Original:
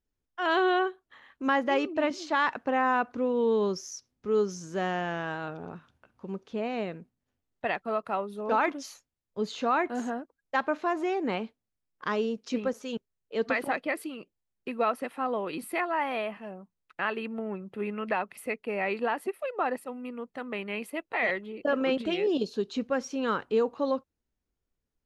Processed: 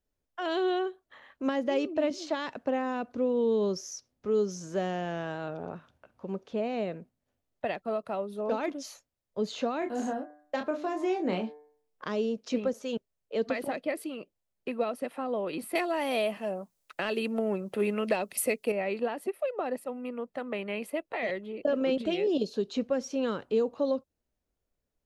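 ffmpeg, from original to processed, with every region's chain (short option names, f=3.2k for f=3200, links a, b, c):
-filter_complex "[0:a]asettb=1/sr,asplit=3[a][b][c];[a]atrim=end=9.794[d];[b]atrim=start=9.79:end=12.05,asetpts=PTS-STARTPTS,afade=t=in:d=0.004:c=qsin,afade=t=out:st=2.256:d=0.004:c=qsin,asplit=2[e][f];[f]adelay=27,volume=-5dB[g];[e][g]amix=inputs=2:normalize=0,atrim=end_sample=99666,bandreject=f=148.8:t=h:w=4,bandreject=f=297.6:t=h:w=4,bandreject=f=446.4:t=h:w=4,bandreject=f=595.2:t=h:w=4,bandreject=f=744:t=h:w=4,bandreject=f=892.8:t=h:w=4,bandreject=f=1.0416k:t=h:w=4,bandreject=f=1.1904k:t=h:w=4,bandreject=f=1.3392k:t=h:w=4,bandreject=f=1.488k:t=h:w=4,bandreject=f=1.6368k:t=h:w=4,bandreject=f=1.7856k:t=h:w=4,bandreject=f=1.9344k:t=h:w=4,bandreject=f=2.0832k:t=h:w=4,bandreject=f=2.232k:t=h:w=4[h];[c]atrim=start=12.046[i];[d][h]acrossfade=d=0.004:c1=hsin:c2=qsin[j];[j][i]acrossfade=d=0.004:c1=qsin:c2=hsin,asettb=1/sr,asplit=3[k][l][m];[k]atrim=end=15.754[n];[l]atrim=start=15.75:end=18.72,asetpts=PTS-STARTPTS,afade=t=in:d=0.004:c=qsin,afade=t=out:st=2.966:d=0.004:c=qsin,bass=f=250:g=-5,treble=f=4k:g=10,acontrast=75[o];[m]atrim=start=18.716[p];[n][o]acrossfade=d=0.004:c1=hsin:c2=qsin[q];[q][p]acrossfade=d=0.004:c1=qsin:c2=hsin,acrossover=split=420|3000[r][s][t];[s]acompressor=threshold=-38dB:ratio=6[u];[r][u][t]amix=inputs=3:normalize=0,equalizer=f=600:w=2.3:g=8"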